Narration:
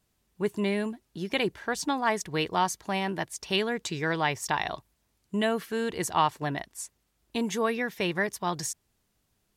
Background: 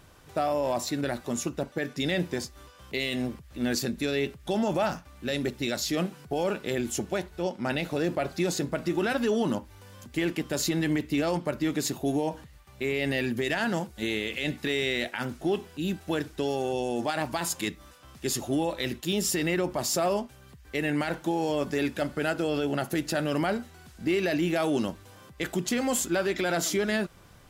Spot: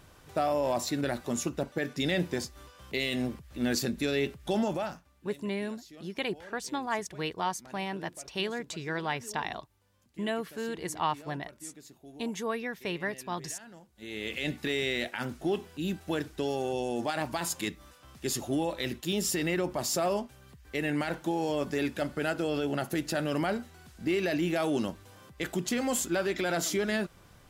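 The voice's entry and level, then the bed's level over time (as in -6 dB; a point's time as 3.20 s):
4.85 s, -5.5 dB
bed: 4.60 s -1 dB
5.39 s -22.5 dB
13.87 s -22.5 dB
14.28 s -2.5 dB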